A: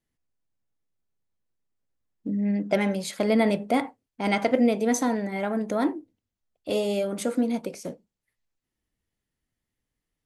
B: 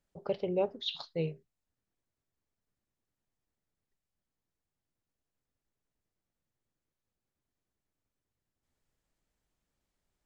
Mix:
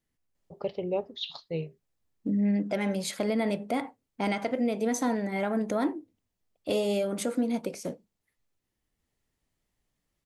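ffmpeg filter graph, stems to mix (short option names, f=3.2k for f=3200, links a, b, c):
-filter_complex "[0:a]volume=0.5dB[a];[1:a]bandreject=f=1.5k:w=6.4,adelay=350,volume=0.5dB[b];[a][b]amix=inputs=2:normalize=0,alimiter=limit=-18.5dB:level=0:latency=1:release=346"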